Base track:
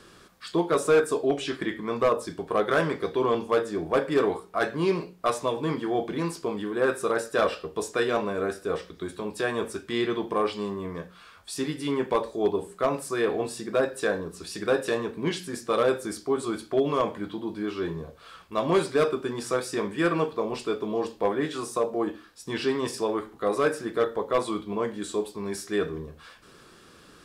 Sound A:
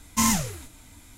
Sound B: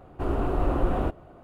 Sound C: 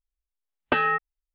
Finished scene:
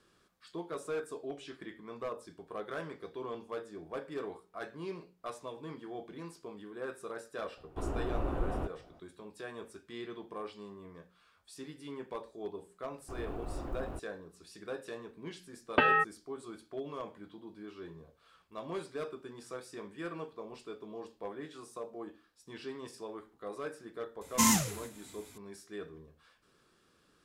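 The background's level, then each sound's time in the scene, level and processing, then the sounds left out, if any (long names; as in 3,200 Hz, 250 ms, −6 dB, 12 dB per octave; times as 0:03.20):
base track −16.5 dB
0:07.57: mix in B −9.5 dB
0:12.89: mix in B −15 dB + mu-law and A-law mismatch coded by A
0:15.06: mix in C −3 dB
0:24.21: mix in A −3.5 dB + high-pass filter 110 Hz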